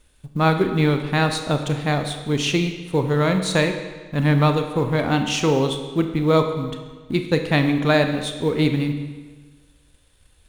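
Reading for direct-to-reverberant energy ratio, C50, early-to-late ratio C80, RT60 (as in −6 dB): 6.0 dB, 7.5 dB, 9.5 dB, 1.4 s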